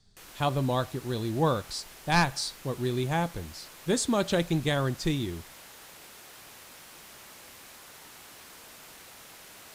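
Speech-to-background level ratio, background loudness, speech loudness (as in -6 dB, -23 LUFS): 18.0 dB, -47.0 LUFS, -29.0 LUFS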